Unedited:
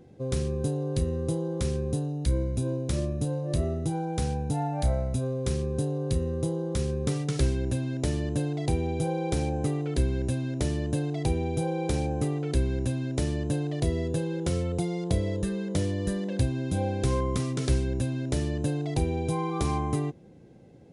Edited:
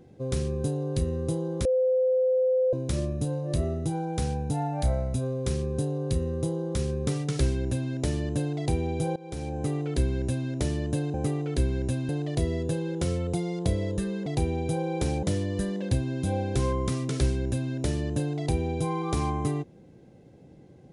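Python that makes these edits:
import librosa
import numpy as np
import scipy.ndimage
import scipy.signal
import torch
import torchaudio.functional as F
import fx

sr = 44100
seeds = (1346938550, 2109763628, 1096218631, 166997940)

y = fx.edit(x, sr, fx.bleep(start_s=1.65, length_s=1.08, hz=514.0, db=-20.0),
    fx.fade_in_from(start_s=9.16, length_s=0.59, floor_db=-20.0),
    fx.move(start_s=11.14, length_s=0.97, to_s=15.71),
    fx.cut(start_s=13.06, length_s=0.48), tone=tone)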